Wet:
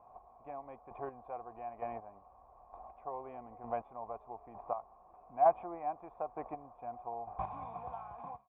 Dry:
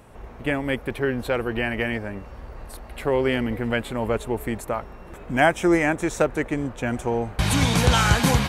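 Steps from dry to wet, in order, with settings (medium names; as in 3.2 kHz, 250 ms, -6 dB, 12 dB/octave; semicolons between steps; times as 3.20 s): fade out at the end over 1.09 s; square tremolo 1.1 Hz, depth 60%, duty 20%; cascade formant filter a; trim +4 dB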